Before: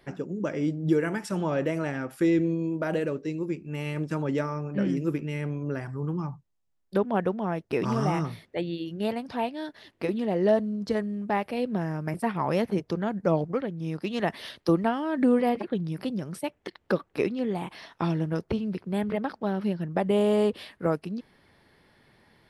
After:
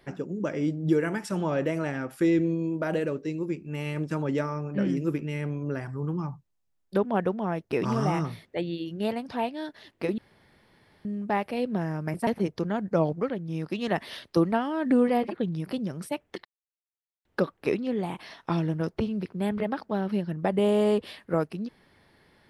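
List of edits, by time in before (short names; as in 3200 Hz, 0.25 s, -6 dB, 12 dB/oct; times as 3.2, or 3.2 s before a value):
10.18–11.05 room tone
12.27–12.59 cut
16.77 insert silence 0.80 s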